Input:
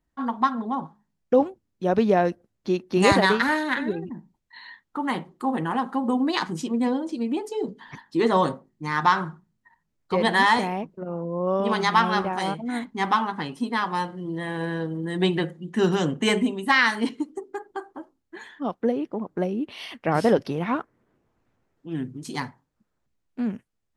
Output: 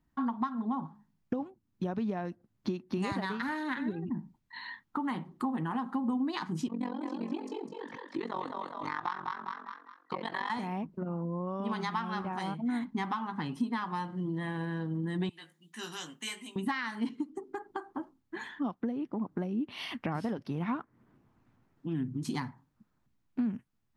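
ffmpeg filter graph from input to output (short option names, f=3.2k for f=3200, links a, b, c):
-filter_complex "[0:a]asettb=1/sr,asplit=3[a][b][c];[a]atrim=end=6.684[d];[b]atrim=start=6.68:end=10.5,asetpts=PTS-STARTPTS,afade=t=in:d=0.004:c=qsin,afade=t=out:st=3.816:d=0.004:c=qsin,highpass=350,lowpass=6.3k,tremolo=f=45:d=0.947,asplit=5[e][f][g][h][i];[f]adelay=203,afreqshift=33,volume=-6dB[j];[g]adelay=406,afreqshift=66,volume=-15.1dB[k];[h]adelay=609,afreqshift=99,volume=-24.2dB[l];[i]adelay=812,afreqshift=132,volume=-33.4dB[m];[e][j][k][l][m]amix=inputs=5:normalize=0,atrim=end_sample=168462[n];[c]atrim=start=10.496[o];[d][n]acrossfade=d=0.004:c1=hsin:c2=qsin[p];[p][o]acrossfade=d=0.004:c1=qsin:c2=hsin,asettb=1/sr,asplit=3[q][r][s];[q]atrim=end=15.294[t];[r]atrim=start=15.29:end=16.56,asetpts=PTS-STARTPTS,afade=t=in:d=0.004:c=qsin,afade=t=out:st=1.266:d=0.004:c=qsin,aderivative,asplit=2[u][v];[v]adelay=18,volume=-7dB[w];[u][w]amix=inputs=2:normalize=0,atrim=end_sample=56007[x];[s]atrim=start=16.556[y];[t][x]acrossfade=d=0.004:c1=hsin:c2=qsin[z];[z][y]acrossfade=d=0.004:c1=qsin:c2=hsin,acompressor=threshold=-35dB:ratio=5,equalizer=f=125:t=o:w=1:g=6,equalizer=f=250:t=o:w=1:g=6,equalizer=f=500:t=o:w=1:g=-6,equalizer=f=1k:t=o:w=1:g=4,equalizer=f=8k:t=o:w=1:g=-4"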